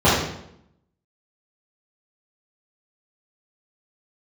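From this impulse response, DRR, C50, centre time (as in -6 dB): -12.0 dB, 0.5 dB, 61 ms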